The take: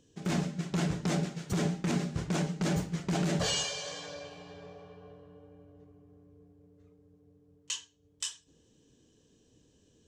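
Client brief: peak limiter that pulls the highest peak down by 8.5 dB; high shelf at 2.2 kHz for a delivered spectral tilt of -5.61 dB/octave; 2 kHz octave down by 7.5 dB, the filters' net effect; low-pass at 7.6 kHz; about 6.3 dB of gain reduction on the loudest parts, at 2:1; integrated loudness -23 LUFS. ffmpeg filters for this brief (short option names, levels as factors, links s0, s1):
-af "lowpass=7600,equalizer=f=2000:t=o:g=-5,highshelf=f=2200:g=-8.5,acompressor=threshold=0.0126:ratio=2,volume=11.2,alimiter=limit=0.237:level=0:latency=1"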